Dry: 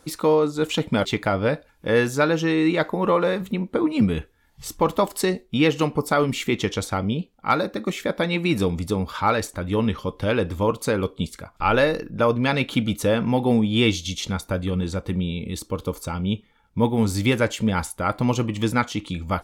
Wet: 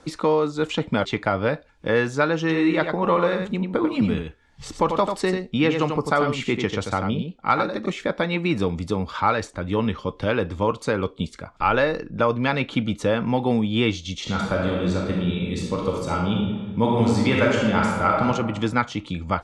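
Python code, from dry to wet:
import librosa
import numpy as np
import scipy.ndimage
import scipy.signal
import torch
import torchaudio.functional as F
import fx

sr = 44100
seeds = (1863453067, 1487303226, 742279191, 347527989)

y = fx.echo_single(x, sr, ms=92, db=-6.5, at=(2.4, 7.86))
y = fx.reverb_throw(y, sr, start_s=14.21, length_s=4.02, rt60_s=1.3, drr_db=-2.5)
y = scipy.signal.sosfilt(scipy.signal.bessel(6, 6000.0, 'lowpass', norm='mag', fs=sr, output='sos'), y)
y = fx.dynamic_eq(y, sr, hz=1200.0, q=0.72, threshold_db=-30.0, ratio=4.0, max_db=4)
y = fx.band_squash(y, sr, depth_pct=40)
y = F.gain(torch.from_numpy(y), -2.5).numpy()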